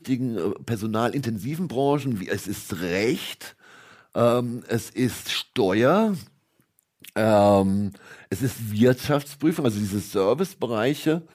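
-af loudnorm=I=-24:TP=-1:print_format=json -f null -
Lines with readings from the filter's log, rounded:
"input_i" : "-24.0",
"input_tp" : "-6.5",
"input_lra" : "4.1",
"input_thresh" : "-34.4",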